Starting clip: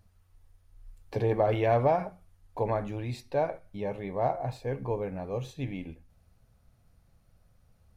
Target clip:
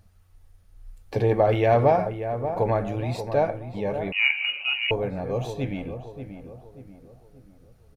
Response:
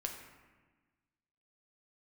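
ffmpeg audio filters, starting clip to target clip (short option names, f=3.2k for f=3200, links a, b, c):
-filter_complex "[0:a]bandreject=f=1k:w=14,asplit=2[a][b];[b]adelay=584,lowpass=f=1.5k:p=1,volume=-9dB,asplit=2[c][d];[d]adelay=584,lowpass=f=1.5k:p=1,volume=0.44,asplit=2[e][f];[f]adelay=584,lowpass=f=1.5k:p=1,volume=0.44,asplit=2[g][h];[h]adelay=584,lowpass=f=1.5k:p=1,volume=0.44,asplit=2[i][j];[j]adelay=584,lowpass=f=1.5k:p=1,volume=0.44[k];[a][c][e][g][i][k]amix=inputs=6:normalize=0,asettb=1/sr,asplit=3[l][m][n];[l]atrim=end=4.124[o];[m]atrim=start=4.12:end=4.91,asetpts=PTS-STARTPTS,afade=t=in:d=0.004:c=qsin,afade=t=out:st=0.786:d=0.004:c=qsin,lowpass=f=2.6k:t=q:w=0.5098,lowpass=f=2.6k:t=q:w=0.6013,lowpass=f=2.6k:t=q:w=0.9,lowpass=f=2.6k:t=q:w=2.563,afreqshift=-3000[p];[n]atrim=start=4.906[q];[o][p]acrossfade=d=0.004:c1=hsin:c2=qsin[r];[r][q]acrossfade=d=0.004:c1=qsin:c2=hsin,volume=5.5dB"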